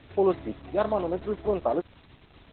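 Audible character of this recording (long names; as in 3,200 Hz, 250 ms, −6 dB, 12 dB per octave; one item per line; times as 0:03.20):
a quantiser's noise floor 8 bits, dither triangular
Opus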